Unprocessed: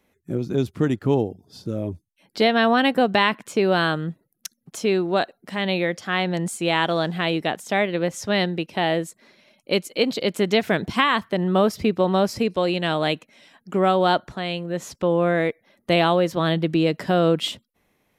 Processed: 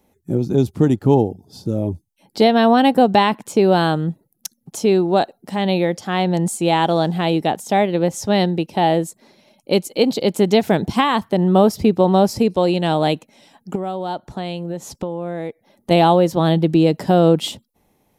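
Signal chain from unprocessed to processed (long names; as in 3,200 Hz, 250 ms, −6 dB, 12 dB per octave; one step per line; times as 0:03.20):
parametric band 1,800 Hz −10.5 dB 2.3 octaves
0:13.75–0:15.91: downward compressor 10 to 1, threshold −30 dBFS, peak gain reduction 13 dB
parametric band 840 Hz +8.5 dB 0.33 octaves
level +7 dB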